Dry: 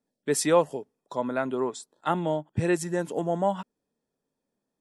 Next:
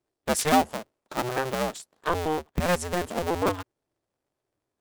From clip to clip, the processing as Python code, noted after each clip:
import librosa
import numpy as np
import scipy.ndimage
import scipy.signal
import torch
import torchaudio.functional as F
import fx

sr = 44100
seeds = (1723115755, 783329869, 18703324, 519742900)

y = fx.cycle_switch(x, sr, every=2, mode='inverted')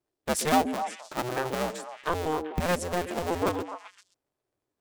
y = fx.echo_stepped(x, sr, ms=129, hz=340.0, octaves=1.4, feedback_pct=70, wet_db=-4)
y = y * 10.0 ** (-2.5 / 20.0)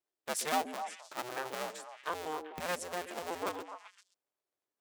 y = fx.highpass(x, sr, hz=710.0, slope=6)
y = y * 10.0 ** (-5.5 / 20.0)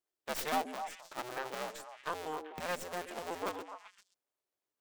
y = fx.tracing_dist(x, sr, depth_ms=0.29)
y = y * 10.0 ** (-1.0 / 20.0)